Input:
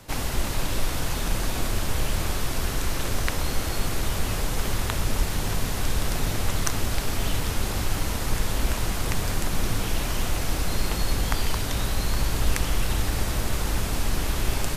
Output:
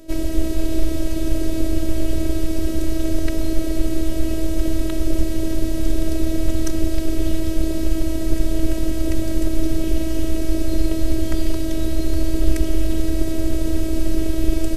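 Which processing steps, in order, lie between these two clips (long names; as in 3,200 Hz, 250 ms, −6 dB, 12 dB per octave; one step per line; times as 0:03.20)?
low shelf with overshoot 650 Hz +12 dB, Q 3
phases set to zero 321 Hz
level −2.5 dB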